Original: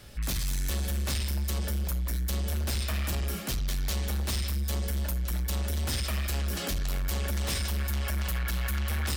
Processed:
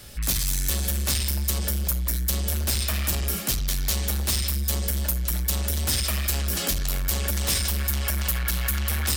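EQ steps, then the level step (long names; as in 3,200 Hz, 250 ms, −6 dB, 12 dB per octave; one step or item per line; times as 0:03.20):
high-shelf EQ 4,700 Hz +9.5 dB
+3.0 dB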